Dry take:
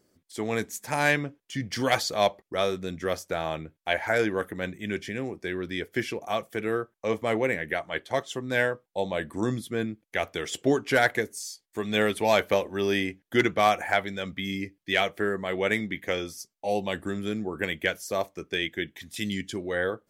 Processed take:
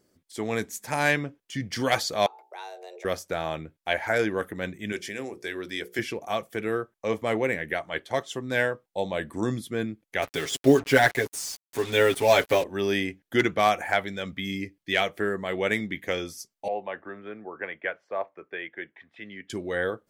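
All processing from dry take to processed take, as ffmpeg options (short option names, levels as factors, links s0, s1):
-filter_complex "[0:a]asettb=1/sr,asplit=3[s0][s1][s2];[s0]atrim=end=2.264[s3];[s1]atrim=start=2.26:end=3.05,asetpts=PTS-STARTPTS,afade=t=in:d=0.004:c=qsin,afade=t=out:st=0.786:d=0.004:c=qsin,bandreject=f=60:t=h:w=6,bandreject=f=120:t=h:w=6,bandreject=f=180:t=h:w=6,bandreject=f=240:t=h:w=6,bandreject=f=300:t=h:w=6,bandreject=f=360:t=h:w=6,bandreject=f=420:t=h:w=6,bandreject=f=480:t=h:w=6,bandreject=f=540:t=h:w=6,bandreject=f=600:t=h:w=6,acompressor=threshold=0.00708:ratio=2.5:attack=3.2:release=140:knee=1:detection=peak,afreqshift=270[s4];[s2]atrim=start=3.046[s5];[s3][s4]acrossfade=d=0.004:c1=hsin:c2=qsin[s6];[s6][s5]acrossfade=d=0.004:c1=qsin:c2=hsin,asettb=1/sr,asplit=3[s7][s8][s9];[s7]atrim=end=4.924[s10];[s8]atrim=start=4.92:end=5.99,asetpts=PTS-STARTPTS,afade=t=in:d=0.004:c=qsin,afade=t=out:st=1.066:d=0.004:c=qsin,bass=f=250:g=-9,treble=f=4000:g=7,bandreject=f=60:t=h:w=6,bandreject=f=120:t=h:w=6,bandreject=f=180:t=h:w=6,bandreject=f=240:t=h:w=6,bandreject=f=300:t=h:w=6,bandreject=f=360:t=h:w=6,bandreject=f=420:t=h:w=6,bandreject=f=480:t=h:w=6,bandreject=f=540:t=h:w=6[s11];[s9]atrim=start=5.986[s12];[s10][s11]acrossfade=d=0.004:c1=hsin:c2=qsin[s13];[s13][s12]acrossfade=d=0.004:c1=qsin:c2=hsin,asettb=1/sr,asplit=3[s14][s15][s16];[s14]atrim=end=10.224[s17];[s15]atrim=start=10.22:end=12.64,asetpts=PTS-STARTPTS,afade=t=in:d=0.004:c=qsin,afade=t=out:st=2.416:d=0.004:c=qsin,aecho=1:1:7.3:0.97,atrim=end_sample=106722,acompressor=mode=upward:threshold=0.0316:ratio=2.5:attack=3.2:release=140:knee=2.83:detection=peak,acrusher=bits=5:mix=0:aa=0.5[s18];[s16]atrim=start=12.636[s19];[s17][s18]acrossfade=d=0.004:c1=hsin:c2=qsin[s20];[s20][s19]acrossfade=d=0.004:c1=qsin:c2=hsin,asettb=1/sr,asplit=3[s21][s22][s23];[s21]atrim=end=16.684[s24];[s22]atrim=start=16.68:end=19.5,asetpts=PTS-STARTPTS,afade=t=in:d=0.004:c=qsin,afade=t=out:st=2.816:d=0.004:c=qsin,highpass=100,lowpass=3000,acrossover=split=460 2300:gain=0.158 1 0.0708[s25][s26][s27];[s25][s26][s27]amix=inputs=3:normalize=0[s28];[s23]atrim=start=19.496[s29];[s24][s28]acrossfade=d=0.004:c1=hsin:c2=qsin[s30];[s30][s29]acrossfade=d=0.004:c1=qsin:c2=hsin"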